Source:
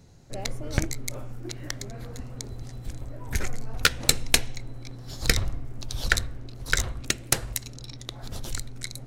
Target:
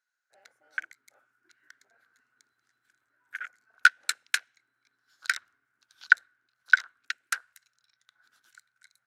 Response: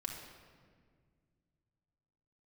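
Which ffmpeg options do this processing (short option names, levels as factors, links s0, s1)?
-af "afwtdn=0.0224,highpass=f=1500:t=q:w=12,volume=0.299"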